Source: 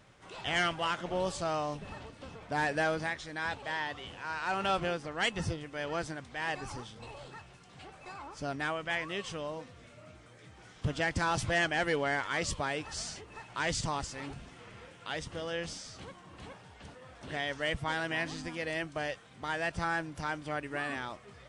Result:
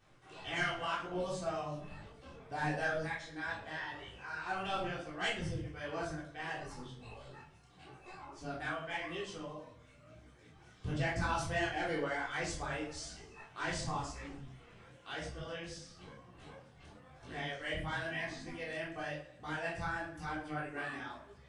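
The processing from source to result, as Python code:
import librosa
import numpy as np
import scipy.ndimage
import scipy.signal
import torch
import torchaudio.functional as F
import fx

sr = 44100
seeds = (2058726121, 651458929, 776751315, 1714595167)

y = fx.dereverb_blind(x, sr, rt60_s=0.98)
y = fx.echo_feedback(y, sr, ms=106, feedback_pct=53, wet_db=-17)
y = fx.room_shoebox(y, sr, seeds[0], volume_m3=470.0, walls='furnished', distance_m=3.6)
y = fx.detune_double(y, sr, cents=34)
y = F.gain(torch.from_numpy(y), -6.5).numpy()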